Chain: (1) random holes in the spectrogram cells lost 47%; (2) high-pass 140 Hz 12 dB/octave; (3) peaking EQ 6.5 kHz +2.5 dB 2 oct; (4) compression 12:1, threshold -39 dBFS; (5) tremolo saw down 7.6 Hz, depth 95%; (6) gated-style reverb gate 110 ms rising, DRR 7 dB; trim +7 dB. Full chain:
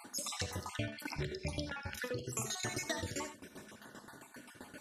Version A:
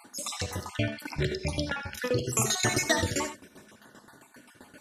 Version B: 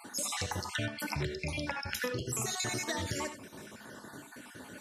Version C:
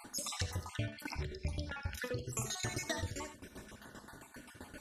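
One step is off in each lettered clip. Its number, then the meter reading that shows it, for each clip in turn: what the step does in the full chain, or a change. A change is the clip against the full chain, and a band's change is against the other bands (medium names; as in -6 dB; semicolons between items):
4, mean gain reduction 5.5 dB; 5, loudness change +5.0 LU; 2, 125 Hz band +4.0 dB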